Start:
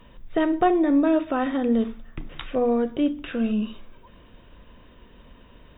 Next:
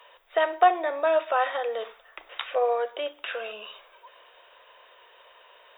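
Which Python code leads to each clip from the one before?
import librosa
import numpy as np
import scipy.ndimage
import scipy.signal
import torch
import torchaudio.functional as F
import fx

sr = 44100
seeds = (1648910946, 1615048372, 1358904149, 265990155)

y = scipy.signal.sosfilt(scipy.signal.cheby2(4, 40, 270.0, 'highpass', fs=sr, output='sos'), x)
y = y * librosa.db_to_amplitude(4.0)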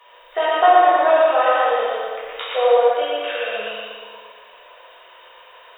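y = fx.echo_feedback(x, sr, ms=117, feedback_pct=46, wet_db=-3)
y = fx.rev_plate(y, sr, seeds[0], rt60_s=1.7, hf_ratio=0.85, predelay_ms=0, drr_db=-7.0)
y = y * librosa.db_to_amplitude(-1.0)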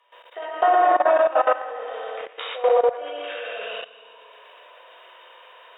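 y = fx.env_lowpass_down(x, sr, base_hz=2300.0, full_db=-15.0)
y = fx.brickwall_highpass(y, sr, low_hz=230.0)
y = fx.level_steps(y, sr, step_db=16)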